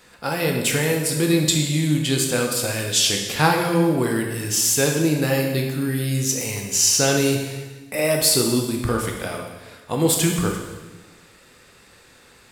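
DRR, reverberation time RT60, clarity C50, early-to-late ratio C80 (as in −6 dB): 1.0 dB, 1.2 s, 4.0 dB, 6.0 dB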